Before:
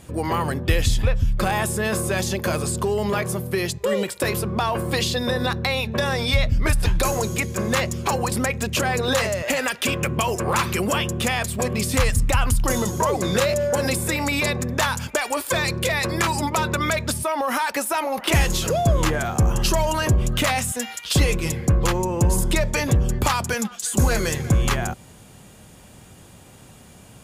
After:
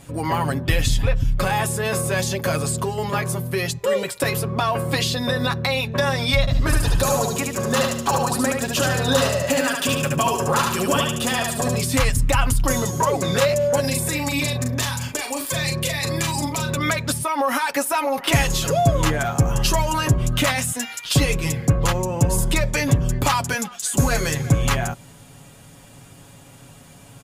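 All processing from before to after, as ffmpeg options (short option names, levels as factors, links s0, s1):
-filter_complex "[0:a]asettb=1/sr,asplit=3[s0][s1][s2];[s0]atrim=end=6.404[s3];[s1]atrim=start=6.4:end=11.8,asetpts=PTS-STARTPTS,afade=t=in:d=0.004:c=qsin,afade=t=out:st=5.396:d=0.004:c=qsin,equalizer=f=2200:t=o:w=0.32:g=-10.5,aecho=1:1:73|146|219|292|365:0.668|0.261|0.102|0.0396|0.0155,atrim=end_sample=238140[s4];[s2]atrim=start=11.796[s5];[s3][s4]acrossfade=d=0.004:c1=hsin:c2=qsin[s6];[s6][s5]acrossfade=d=0.004:c1=qsin:c2=hsin,asettb=1/sr,asplit=3[s7][s8][s9];[s7]atrim=end=13.804[s10];[s8]atrim=start=13.8:end=16.77,asetpts=PTS-STARTPTS,afade=t=in:d=0.004:c=qsin,afade=t=out:st=2.966:d=0.004:c=qsin,bandreject=f=1400:w=15,acrossover=split=300|3000[s11][s12][s13];[s12]acompressor=threshold=0.0355:ratio=6:attack=3.2:release=140:knee=2.83:detection=peak[s14];[s11][s14][s13]amix=inputs=3:normalize=0,asplit=2[s15][s16];[s16]adelay=40,volume=0.501[s17];[s15][s17]amix=inputs=2:normalize=0,atrim=end_sample=130977[s18];[s9]atrim=start=16.766[s19];[s10][s18]acrossfade=d=0.004:c1=hsin:c2=qsin[s20];[s20][s19]acrossfade=d=0.004:c1=qsin:c2=hsin,bandreject=f=410:w=12,aecho=1:1:7.2:0.61"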